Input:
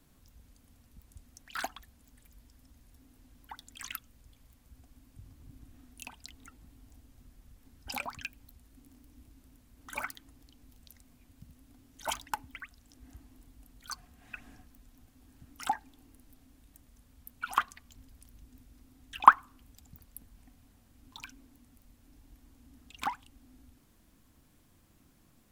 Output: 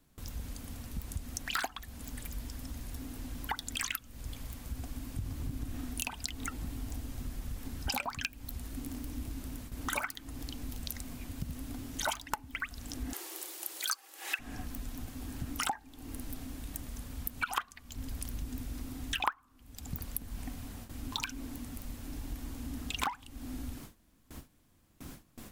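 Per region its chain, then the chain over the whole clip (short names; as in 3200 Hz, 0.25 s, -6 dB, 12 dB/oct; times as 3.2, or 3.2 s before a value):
13.13–14.39 HPF 360 Hz 24 dB/oct + high shelf 2600 Hz +10 dB + frequency shift +69 Hz
whole clip: gate with hold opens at -53 dBFS; compressor 8:1, threshold -50 dBFS; gain +18 dB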